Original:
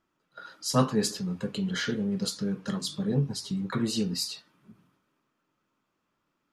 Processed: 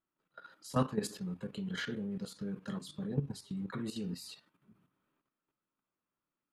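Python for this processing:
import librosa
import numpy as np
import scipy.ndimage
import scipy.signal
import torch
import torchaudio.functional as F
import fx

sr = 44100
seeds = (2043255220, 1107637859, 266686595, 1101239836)

y = fx.peak_eq(x, sr, hz=5600.0, db=-9.0, octaves=0.78)
y = fx.level_steps(y, sr, step_db=11)
y = y * 10.0 ** (-4.5 / 20.0)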